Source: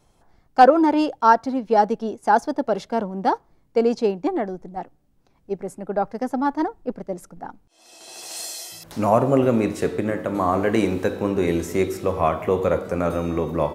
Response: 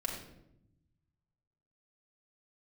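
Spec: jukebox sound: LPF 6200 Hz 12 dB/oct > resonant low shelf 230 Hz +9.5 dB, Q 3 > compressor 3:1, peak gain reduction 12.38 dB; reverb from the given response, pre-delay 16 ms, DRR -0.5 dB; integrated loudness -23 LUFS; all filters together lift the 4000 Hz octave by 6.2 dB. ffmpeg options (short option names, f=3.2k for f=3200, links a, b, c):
-filter_complex "[0:a]equalizer=f=4k:t=o:g=8.5,asplit=2[a][b];[1:a]atrim=start_sample=2205,adelay=16[c];[b][c]afir=irnorm=-1:irlink=0,volume=-2dB[d];[a][d]amix=inputs=2:normalize=0,lowpass=6.2k,lowshelf=f=230:t=q:w=3:g=9.5,acompressor=threshold=-20dB:ratio=3,volume=-0.5dB"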